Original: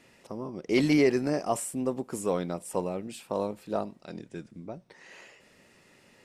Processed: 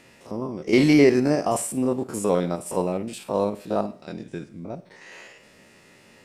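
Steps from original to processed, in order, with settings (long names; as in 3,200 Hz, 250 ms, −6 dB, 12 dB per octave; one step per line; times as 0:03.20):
spectrum averaged block by block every 50 ms
four-comb reverb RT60 0.46 s, combs from 28 ms, DRR 15 dB
level +7.5 dB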